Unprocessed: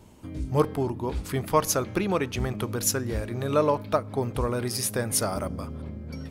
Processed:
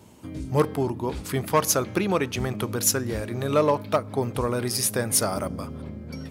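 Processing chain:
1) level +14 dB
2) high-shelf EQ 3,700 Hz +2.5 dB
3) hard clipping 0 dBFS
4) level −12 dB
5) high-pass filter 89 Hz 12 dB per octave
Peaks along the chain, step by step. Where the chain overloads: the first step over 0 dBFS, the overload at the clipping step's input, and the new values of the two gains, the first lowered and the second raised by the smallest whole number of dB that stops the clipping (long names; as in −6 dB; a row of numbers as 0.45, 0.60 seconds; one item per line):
+6.5, +6.5, 0.0, −12.0, −8.0 dBFS
step 1, 6.5 dB
step 1 +7 dB, step 4 −5 dB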